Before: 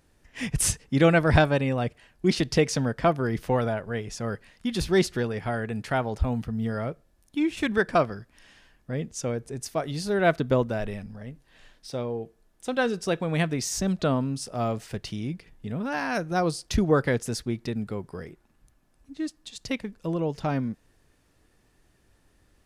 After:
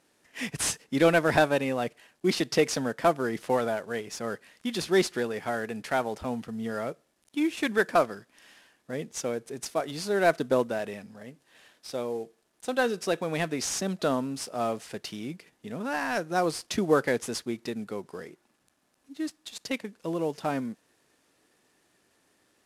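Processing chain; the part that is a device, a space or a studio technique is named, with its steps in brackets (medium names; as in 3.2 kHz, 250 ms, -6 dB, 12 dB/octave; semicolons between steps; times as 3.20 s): early wireless headset (high-pass 250 Hz 12 dB/octave; CVSD coder 64 kbps)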